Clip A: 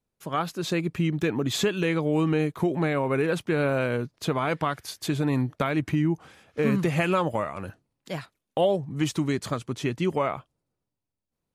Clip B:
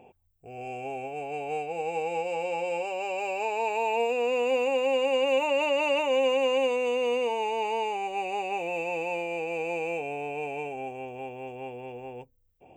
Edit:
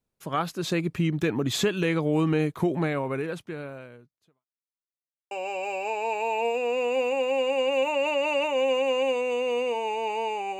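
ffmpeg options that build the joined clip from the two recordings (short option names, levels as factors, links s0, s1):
-filter_complex "[0:a]apad=whole_dur=10.59,atrim=end=10.59,asplit=2[s0][s1];[s0]atrim=end=4.46,asetpts=PTS-STARTPTS,afade=t=out:st=2.73:d=1.73:c=qua[s2];[s1]atrim=start=4.46:end=5.31,asetpts=PTS-STARTPTS,volume=0[s3];[1:a]atrim=start=2.86:end=8.14,asetpts=PTS-STARTPTS,afade=t=in:d=0.004:c=hsin[s4];[s2][s3][s4]concat=n=3:v=0:a=1"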